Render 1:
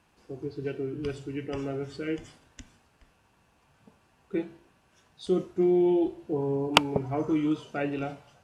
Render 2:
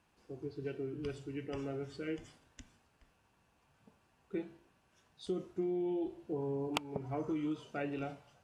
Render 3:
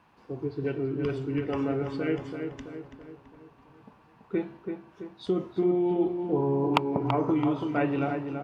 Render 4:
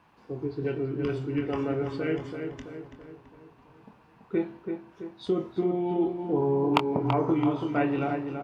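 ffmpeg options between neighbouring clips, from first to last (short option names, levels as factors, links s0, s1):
-af "acompressor=threshold=0.0562:ratio=10,volume=0.447"
-filter_complex "[0:a]equalizer=f=125:t=o:w=1:g=8,equalizer=f=250:t=o:w=1:g=7,equalizer=f=500:t=o:w=1:g=4,equalizer=f=1000:t=o:w=1:g=12,equalizer=f=2000:t=o:w=1:g=5,equalizer=f=4000:t=o:w=1:g=4,equalizer=f=8000:t=o:w=1:g=-7,asplit=2[s0][s1];[s1]adelay=332,lowpass=f=2200:p=1,volume=0.501,asplit=2[s2][s3];[s3]adelay=332,lowpass=f=2200:p=1,volume=0.51,asplit=2[s4][s5];[s5]adelay=332,lowpass=f=2200:p=1,volume=0.51,asplit=2[s6][s7];[s7]adelay=332,lowpass=f=2200:p=1,volume=0.51,asplit=2[s8][s9];[s9]adelay=332,lowpass=f=2200:p=1,volume=0.51,asplit=2[s10][s11];[s11]adelay=332,lowpass=f=2200:p=1,volume=0.51[s12];[s0][s2][s4][s6][s8][s10][s12]amix=inputs=7:normalize=0,volume=1.26"
-filter_complex "[0:a]asplit=2[s0][s1];[s1]adelay=24,volume=0.376[s2];[s0][s2]amix=inputs=2:normalize=0"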